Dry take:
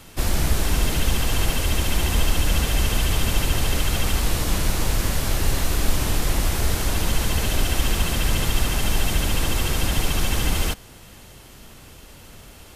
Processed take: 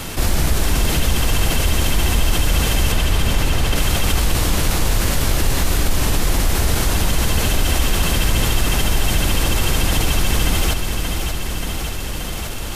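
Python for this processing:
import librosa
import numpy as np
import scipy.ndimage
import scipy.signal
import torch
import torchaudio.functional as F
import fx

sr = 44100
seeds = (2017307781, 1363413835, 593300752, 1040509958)

y = fx.high_shelf(x, sr, hz=6400.0, db=-7.0, at=(2.92, 3.76))
y = fx.echo_feedback(y, sr, ms=580, feedback_pct=60, wet_db=-11)
y = fx.env_flatten(y, sr, amount_pct=50)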